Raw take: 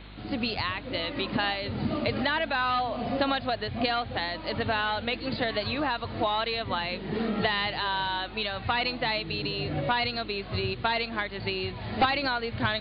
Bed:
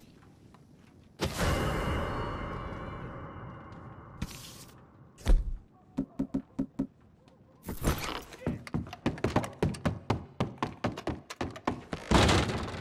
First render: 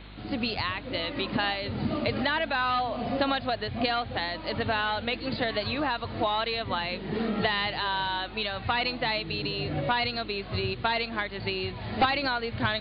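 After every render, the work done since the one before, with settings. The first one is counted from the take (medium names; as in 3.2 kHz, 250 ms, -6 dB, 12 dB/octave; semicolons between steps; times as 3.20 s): no audible change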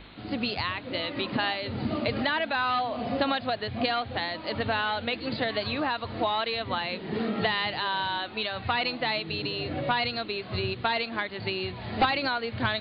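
de-hum 50 Hz, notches 4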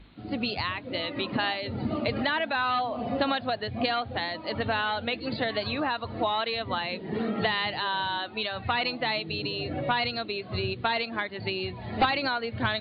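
noise reduction 10 dB, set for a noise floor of -41 dBFS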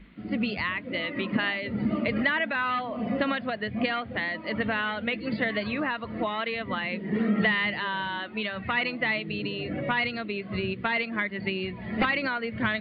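graphic EQ with 31 bands 100 Hz -11 dB, 200 Hz +10 dB, 800 Hz -9 dB, 2 kHz +8 dB, 4 kHz -12 dB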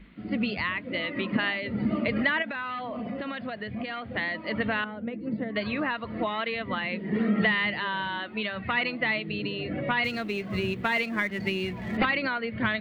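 2.42–4.10 s: compression, threshold -30 dBFS; 4.84–5.56 s: band-pass filter 230 Hz, Q 0.71; 10.04–11.97 s: companding laws mixed up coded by mu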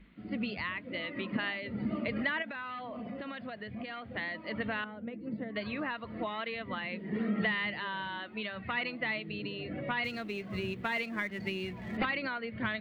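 trim -7 dB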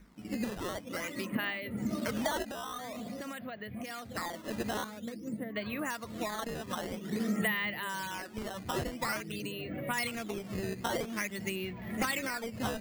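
decimation with a swept rate 11×, swing 160% 0.49 Hz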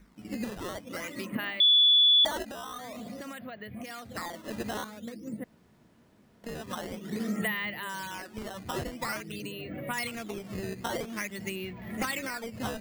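1.60–2.25 s: bleep 3.44 kHz -17 dBFS; 5.44–6.44 s: room tone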